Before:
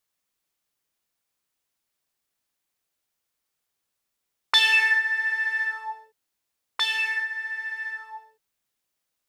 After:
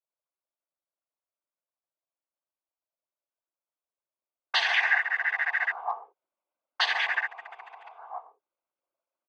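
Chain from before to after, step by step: Wiener smoothing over 25 samples; vocal rider 2 s; three-band isolator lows -21 dB, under 460 Hz, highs -18 dB, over 3100 Hz; comb 3.2 ms, depth 42%; noise vocoder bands 16; gain +2 dB

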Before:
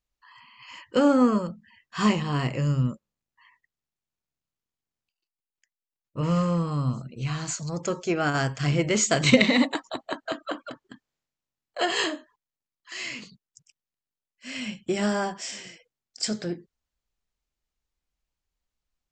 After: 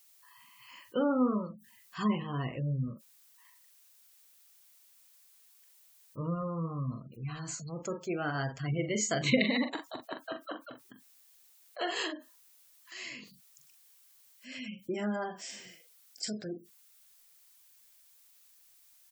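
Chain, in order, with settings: doubler 43 ms -7 dB; added noise blue -53 dBFS; spectral gate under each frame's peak -25 dB strong; gain -9 dB

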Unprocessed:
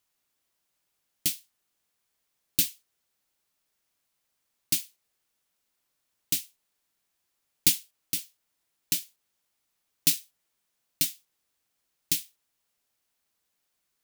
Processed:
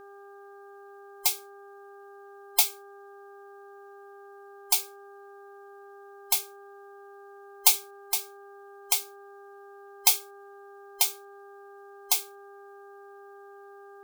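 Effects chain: band inversion scrambler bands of 1000 Hz; buzz 400 Hz, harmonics 4, -51 dBFS -5 dB/oct; gain +2.5 dB

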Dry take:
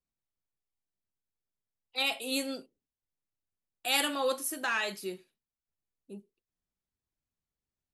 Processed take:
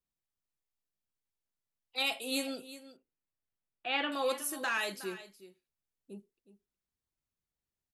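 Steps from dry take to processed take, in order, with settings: 2.6–4.12 LPF 3000 Hz 24 dB/oct; on a send: echo 0.366 s -15 dB; on the sum: gain -2 dB

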